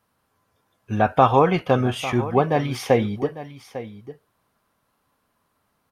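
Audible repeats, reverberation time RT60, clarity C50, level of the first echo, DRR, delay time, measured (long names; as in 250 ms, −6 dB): 1, no reverb audible, no reverb audible, −14.5 dB, no reverb audible, 850 ms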